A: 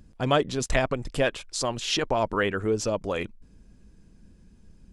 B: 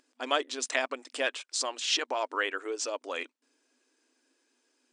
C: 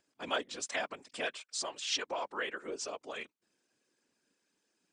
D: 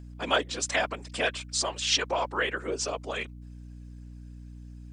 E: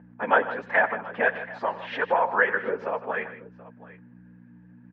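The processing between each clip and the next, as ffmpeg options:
ffmpeg -i in.wav -af "afftfilt=real='re*between(b*sr/4096,240,9500)':imag='im*between(b*sr/4096,240,9500)':win_size=4096:overlap=0.75,tiltshelf=frequency=630:gain=-7,volume=-7dB" out.wav
ffmpeg -i in.wav -af "afftfilt=real='hypot(re,im)*cos(2*PI*random(0))':imag='hypot(re,im)*sin(2*PI*random(1))':win_size=512:overlap=0.75" out.wav
ffmpeg -i in.wav -af "aeval=exprs='val(0)+0.00282*(sin(2*PI*60*n/s)+sin(2*PI*2*60*n/s)/2+sin(2*PI*3*60*n/s)/3+sin(2*PI*4*60*n/s)/4+sin(2*PI*5*60*n/s)/5)':channel_layout=same,volume=8.5dB" out.wav
ffmpeg -i in.wav -af "flanger=delay=5.7:depth=4.8:regen=-37:speed=1.4:shape=sinusoidal,highpass=210,equalizer=frequency=210:width_type=q:width=4:gain=9,equalizer=frequency=330:width_type=q:width=4:gain=-7,equalizer=frequency=490:width_type=q:width=4:gain=6,equalizer=frequency=890:width_type=q:width=4:gain=9,equalizer=frequency=1700:width_type=q:width=4:gain=10,lowpass=frequency=2000:width=0.5412,lowpass=frequency=2000:width=1.3066,aecho=1:1:92|156|728:0.133|0.2|0.106,volume=5dB" out.wav

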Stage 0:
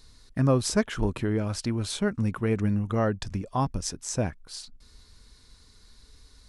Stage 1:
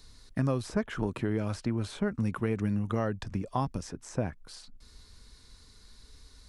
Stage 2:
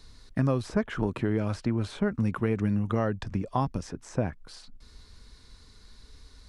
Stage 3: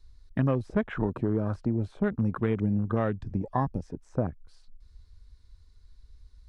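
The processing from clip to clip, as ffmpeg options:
ffmpeg -i in.wav -filter_complex "[0:a]acrossover=split=98|2300[link_01][link_02][link_03];[link_01]acompressor=threshold=-43dB:ratio=4[link_04];[link_02]acompressor=threshold=-26dB:ratio=4[link_05];[link_03]acompressor=threshold=-49dB:ratio=4[link_06];[link_04][link_05][link_06]amix=inputs=3:normalize=0" out.wav
ffmpeg -i in.wav -af "highshelf=frequency=6700:gain=-9,volume=3dB" out.wav
ffmpeg -i in.wav -af "afwtdn=0.0126" out.wav

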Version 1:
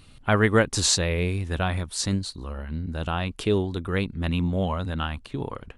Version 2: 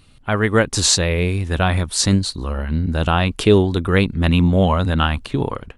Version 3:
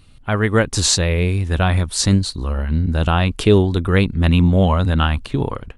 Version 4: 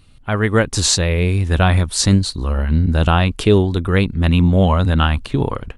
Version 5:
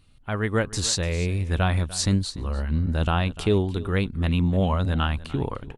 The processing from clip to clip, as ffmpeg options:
ffmpeg -i in.wav -af "dynaudnorm=framelen=220:gausssize=5:maxgain=12dB" out.wav
ffmpeg -i in.wav -af "lowshelf=frequency=110:gain=6,volume=-1dB" out.wav
ffmpeg -i in.wav -af "dynaudnorm=framelen=240:gausssize=3:maxgain=11.5dB,volume=-1dB" out.wav
ffmpeg -i in.wav -af "aecho=1:1:296:0.126,volume=-8.5dB" out.wav

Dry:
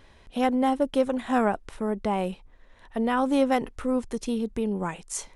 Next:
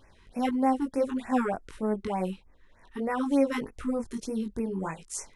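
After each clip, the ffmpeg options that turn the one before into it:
ffmpeg -i in.wav -af "flanger=delay=18.5:depth=3.4:speed=1.6,afftfilt=real='re*(1-between(b*sr/1024,560*pow(3800/560,0.5+0.5*sin(2*PI*3.3*pts/sr))/1.41,560*pow(3800/560,0.5+0.5*sin(2*PI*3.3*pts/sr))*1.41))':imag='im*(1-between(b*sr/1024,560*pow(3800/560,0.5+0.5*sin(2*PI*3.3*pts/sr))/1.41,560*pow(3800/560,0.5+0.5*sin(2*PI*3.3*pts/sr))*1.41))':win_size=1024:overlap=0.75" out.wav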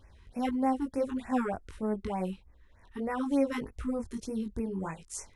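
ffmpeg -i in.wav -af "equalizer=frequency=67:width_type=o:width=1.3:gain=13,volume=-4dB" out.wav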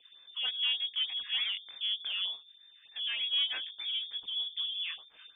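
ffmpeg -i in.wav -af "bandreject=frequency=50:width_type=h:width=6,bandreject=frequency=100:width_type=h:width=6,bandreject=frequency=150:width_type=h:width=6,bandreject=frequency=200:width_type=h:width=6,bandreject=frequency=250:width_type=h:width=6,bandreject=frequency=300:width_type=h:width=6,bandreject=frequency=350:width_type=h:width=6,bandreject=frequency=400:width_type=h:width=6,bandreject=frequency=450:width_type=h:width=6,aeval=exprs='(tanh(17.8*val(0)+0.3)-tanh(0.3))/17.8':channel_layout=same,lowpass=frequency=3100:width_type=q:width=0.5098,lowpass=frequency=3100:width_type=q:width=0.6013,lowpass=frequency=3100:width_type=q:width=0.9,lowpass=frequency=3100:width_type=q:width=2.563,afreqshift=-3600" out.wav

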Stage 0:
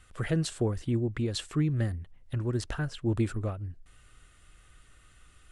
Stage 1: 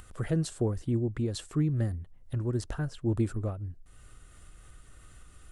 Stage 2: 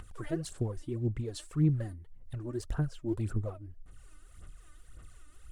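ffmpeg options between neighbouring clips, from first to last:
ffmpeg -i in.wav -af "equalizer=frequency=2600:width=0.64:gain=-8,acompressor=mode=upward:threshold=-42dB:ratio=2.5" out.wav
ffmpeg -i in.wav -af "aphaser=in_gain=1:out_gain=1:delay=3.4:decay=0.7:speed=1.8:type=sinusoidal,volume=-7dB" out.wav

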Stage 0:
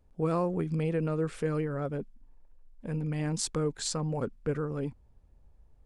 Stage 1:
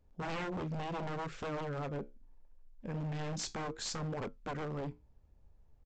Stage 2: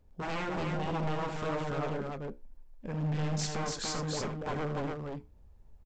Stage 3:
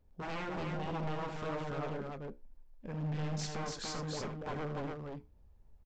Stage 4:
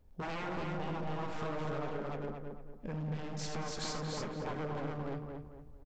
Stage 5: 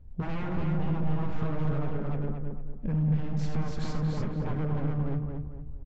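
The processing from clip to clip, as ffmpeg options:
ffmpeg -i in.wav -af "flanger=delay=9.7:depth=5.5:regen=-66:speed=0.71:shape=sinusoidal,aresample=16000,aeval=exprs='0.02*(abs(mod(val(0)/0.02+3,4)-2)-1)':channel_layout=same,aresample=44100,volume=1dB" out.wav
ffmpeg -i in.wav -af "aphaser=in_gain=1:out_gain=1:delay=4.9:decay=0.21:speed=1.3:type=sinusoidal,aecho=1:1:78.72|288.6:0.355|0.708,volume=2.5dB" out.wav
ffmpeg -i in.wav -af "equalizer=frequency=7800:width=2:gain=-4,volume=-4.5dB" out.wav
ffmpeg -i in.wav -filter_complex "[0:a]acompressor=threshold=-40dB:ratio=6,asplit=2[link_01][link_02];[link_02]adelay=227,lowpass=frequency=2000:poles=1,volume=-4dB,asplit=2[link_03][link_04];[link_04]adelay=227,lowpass=frequency=2000:poles=1,volume=0.37,asplit=2[link_05][link_06];[link_06]adelay=227,lowpass=frequency=2000:poles=1,volume=0.37,asplit=2[link_07][link_08];[link_08]adelay=227,lowpass=frequency=2000:poles=1,volume=0.37,asplit=2[link_09][link_10];[link_10]adelay=227,lowpass=frequency=2000:poles=1,volume=0.37[link_11];[link_03][link_05][link_07][link_09][link_11]amix=inputs=5:normalize=0[link_12];[link_01][link_12]amix=inputs=2:normalize=0,volume=4dB" out.wav
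ffmpeg -i in.wav -af "bass=frequency=250:gain=15,treble=frequency=4000:gain=-10" out.wav

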